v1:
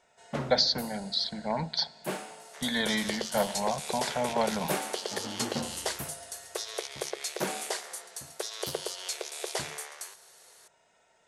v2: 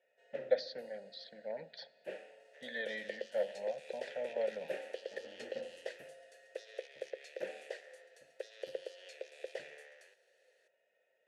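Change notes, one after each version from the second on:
master: add vowel filter e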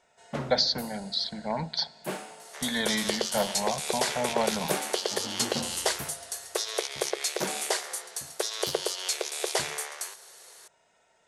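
second sound +5.5 dB; master: remove vowel filter e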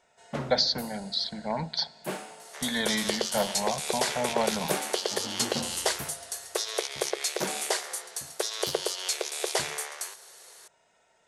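no change

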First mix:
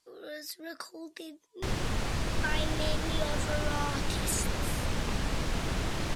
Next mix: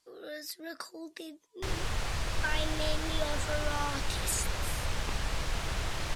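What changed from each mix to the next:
background: add peaking EQ 240 Hz -10.5 dB 1.7 oct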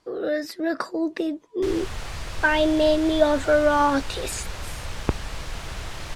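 speech: remove pre-emphasis filter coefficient 0.9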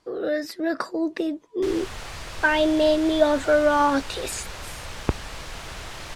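background: add bass shelf 180 Hz -6.5 dB

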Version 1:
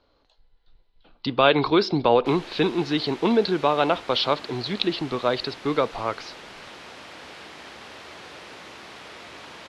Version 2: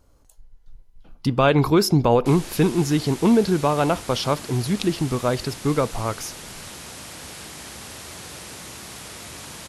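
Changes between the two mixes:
speech: remove resonant low-pass 4.1 kHz, resonance Q 4.3; master: remove three-band isolator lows -13 dB, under 270 Hz, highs -24 dB, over 4.3 kHz

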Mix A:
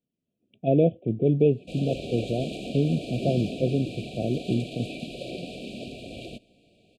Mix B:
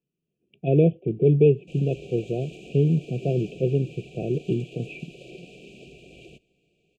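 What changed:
background -9.5 dB; master: add rippled EQ curve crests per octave 0.74, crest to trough 11 dB

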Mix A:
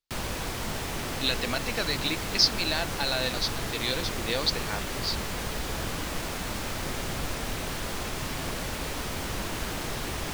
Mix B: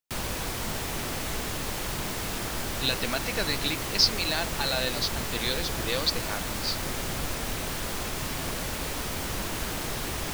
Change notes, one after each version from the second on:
speech: entry +1.60 s; background: add treble shelf 8.3 kHz +6 dB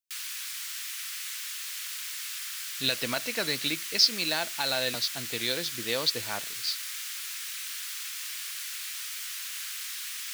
background: add Bessel high-pass 2.4 kHz, order 8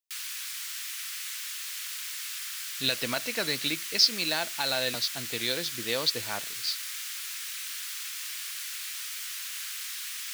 no change

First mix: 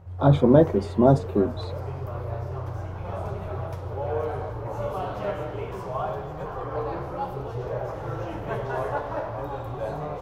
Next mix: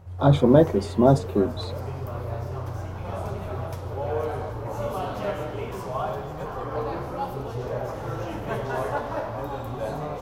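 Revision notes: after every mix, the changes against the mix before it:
background: add peaking EQ 240 Hz +14 dB 0.21 oct; master: add treble shelf 3.6 kHz +9.5 dB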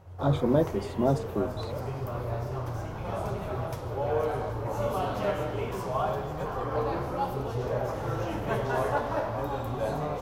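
speech -8.0 dB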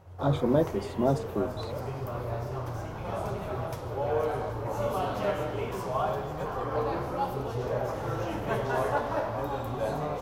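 master: add bass shelf 140 Hz -3 dB

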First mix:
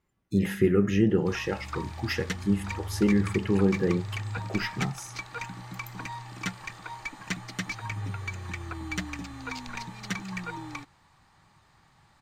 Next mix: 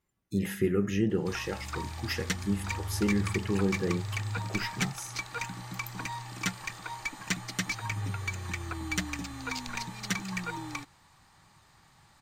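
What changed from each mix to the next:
speech -5.0 dB; master: add treble shelf 5.2 kHz +9 dB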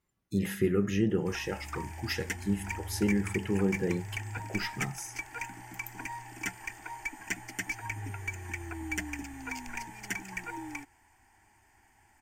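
background: add static phaser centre 800 Hz, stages 8

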